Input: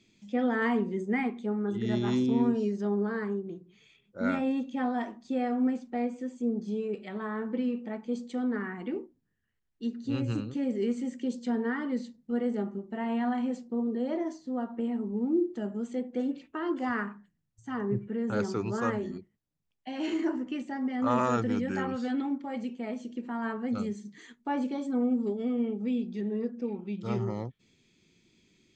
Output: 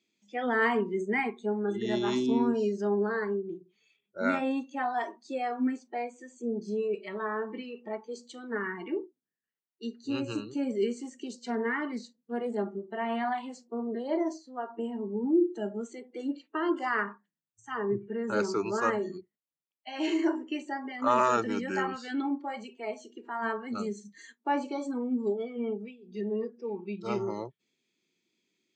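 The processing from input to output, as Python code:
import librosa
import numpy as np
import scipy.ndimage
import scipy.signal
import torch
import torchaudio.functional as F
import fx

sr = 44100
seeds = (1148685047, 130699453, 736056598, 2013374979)

y = fx.doppler_dist(x, sr, depth_ms=0.12, at=(11.0, 14.16))
y = fx.edit(y, sr, fx.fade_down_up(start_s=25.73, length_s=0.52, db=-13.0, fade_s=0.24, curve='qsin'), tone=tone)
y = fx.noise_reduce_blind(y, sr, reduce_db=15)
y = scipy.signal.sosfilt(scipy.signal.butter(2, 290.0, 'highpass', fs=sr, output='sos'), y)
y = F.gain(torch.from_numpy(y), 4.5).numpy()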